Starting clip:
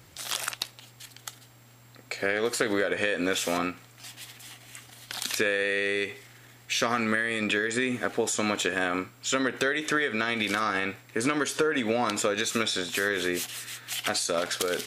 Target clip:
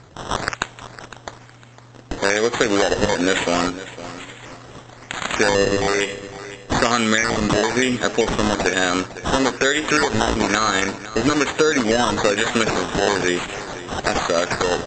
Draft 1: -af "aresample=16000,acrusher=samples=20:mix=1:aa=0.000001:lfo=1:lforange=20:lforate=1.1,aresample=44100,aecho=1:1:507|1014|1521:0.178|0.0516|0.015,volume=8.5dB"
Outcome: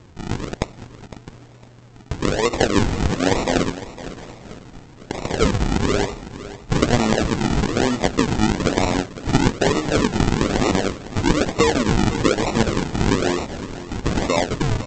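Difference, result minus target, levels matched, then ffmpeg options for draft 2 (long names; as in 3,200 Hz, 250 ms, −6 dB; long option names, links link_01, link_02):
sample-and-hold swept by an LFO: distortion +14 dB
-af "aresample=16000,acrusher=samples=5:mix=1:aa=0.000001:lfo=1:lforange=5:lforate=1.1,aresample=44100,aecho=1:1:507|1014|1521:0.178|0.0516|0.015,volume=8.5dB"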